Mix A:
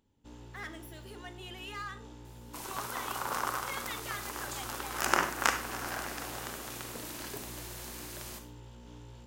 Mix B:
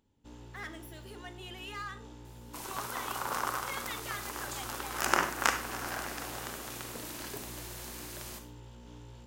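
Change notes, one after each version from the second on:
no change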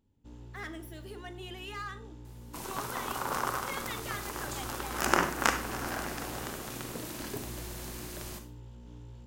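first sound -6.5 dB; master: add bass shelf 370 Hz +10 dB

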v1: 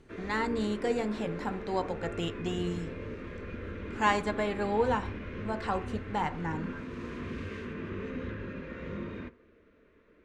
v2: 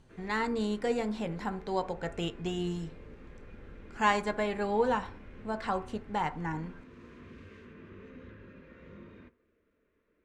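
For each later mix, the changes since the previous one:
background -12.0 dB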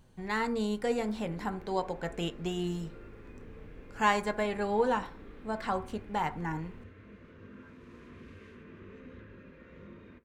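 background: entry +0.90 s; master: remove low-pass 8.7 kHz 12 dB/octave

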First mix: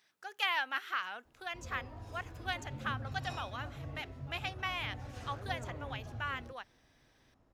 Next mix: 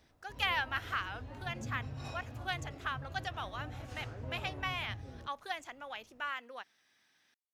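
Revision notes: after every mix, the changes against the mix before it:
background: entry -1.25 s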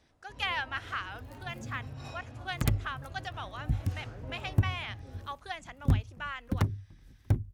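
speech: add steep low-pass 11 kHz 48 dB/octave; second sound: unmuted

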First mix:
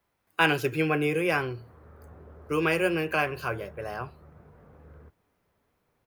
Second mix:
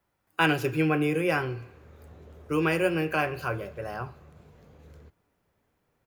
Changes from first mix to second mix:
background: remove resonant low-pass 1.4 kHz, resonance Q 1.6; reverb: on, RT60 1.1 s

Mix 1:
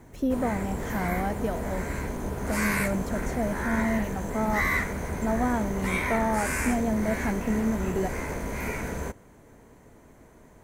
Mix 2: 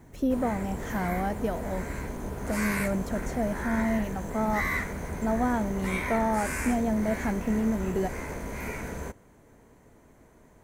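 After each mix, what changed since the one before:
background -3.5 dB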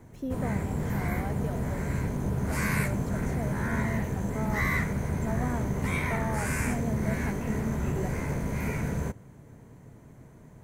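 speech -8.0 dB; background: add peaking EQ 130 Hz +14 dB 1.3 oct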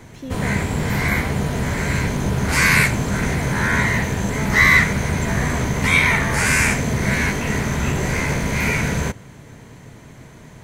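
background +8.0 dB; master: add peaking EQ 3.6 kHz +13.5 dB 2.5 oct

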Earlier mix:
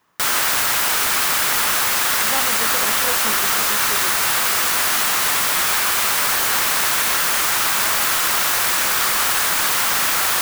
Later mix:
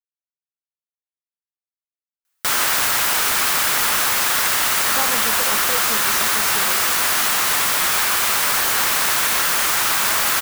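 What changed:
speech: entry +2.65 s; background: entry +2.25 s

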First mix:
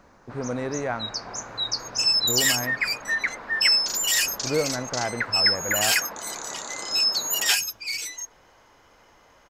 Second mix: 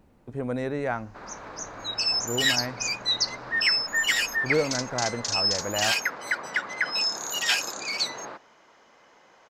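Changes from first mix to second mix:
first sound: entry +0.85 s; second sound: add three-band isolator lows -21 dB, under 460 Hz, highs -14 dB, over 5.2 kHz

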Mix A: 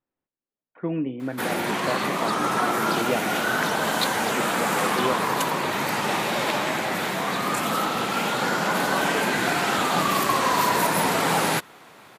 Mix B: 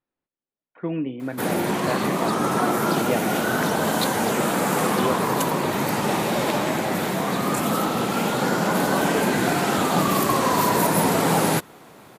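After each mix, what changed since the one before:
background: add tilt shelf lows +7 dB, about 930 Hz; master: add treble shelf 4.9 kHz +11.5 dB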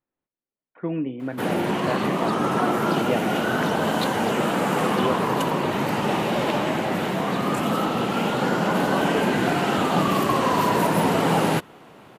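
background: add peaking EQ 2.9 kHz +7 dB 0.25 oct; master: add treble shelf 4.9 kHz -11.5 dB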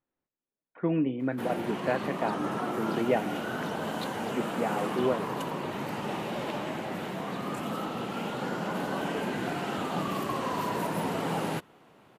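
background -10.5 dB

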